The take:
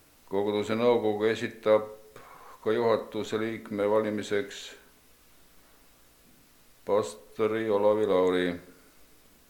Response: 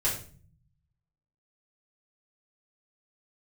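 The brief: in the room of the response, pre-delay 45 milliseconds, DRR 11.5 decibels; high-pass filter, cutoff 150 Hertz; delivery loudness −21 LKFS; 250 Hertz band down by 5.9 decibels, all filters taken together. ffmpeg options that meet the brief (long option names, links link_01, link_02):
-filter_complex "[0:a]highpass=150,equalizer=frequency=250:width_type=o:gain=-7.5,asplit=2[link_01][link_02];[1:a]atrim=start_sample=2205,adelay=45[link_03];[link_02][link_03]afir=irnorm=-1:irlink=0,volume=-20dB[link_04];[link_01][link_04]amix=inputs=2:normalize=0,volume=8.5dB"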